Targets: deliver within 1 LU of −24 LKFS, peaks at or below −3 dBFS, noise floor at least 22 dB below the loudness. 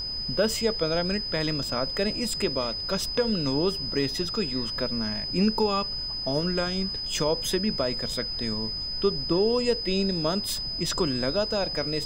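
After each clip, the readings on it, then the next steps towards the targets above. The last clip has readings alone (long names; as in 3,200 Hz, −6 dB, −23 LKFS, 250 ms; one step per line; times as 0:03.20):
interfering tone 5,000 Hz; level of the tone −30 dBFS; background noise floor −33 dBFS; target noise floor −48 dBFS; integrated loudness −26.0 LKFS; sample peak −12.5 dBFS; target loudness −24.0 LKFS
→ notch filter 5,000 Hz, Q 30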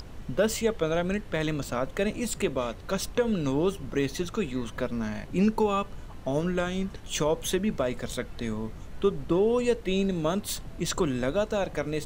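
interfering tone none found; background noise floor −42 dBFS; target noise floor −51 dBFS
→ noise reduction from a noise print 9 dB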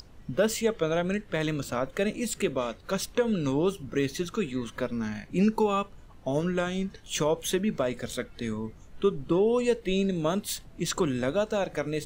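background noise floor −50 dBFS; target noise floor −51 dBFS
→ noise reduction from a noise print 6 dB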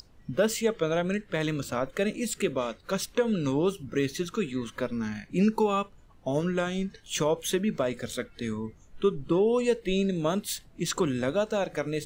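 background noise floor −55 dBFS; integrated loudness −29.0 LKFS; sample peak −14.5 dBFS; target loudness −24.0 LKFS
→ level +5 dB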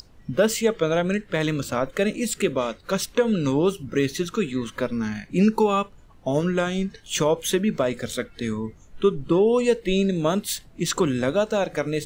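integrated loudness −24.0 LKFS; sample peak −9.5 dBFS; background noise floor −50 dBFS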